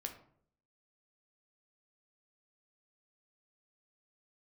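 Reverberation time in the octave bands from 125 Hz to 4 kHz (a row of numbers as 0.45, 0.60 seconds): 0.75, 0.75, 0.65, 0.55, 0.45, 0.35 seconds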